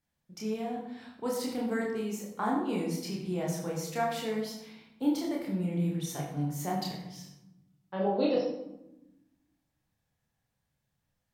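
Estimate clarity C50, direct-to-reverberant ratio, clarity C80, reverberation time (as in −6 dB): 3.5 dB, −2.5 dB, 6.5 dB, 0.90 s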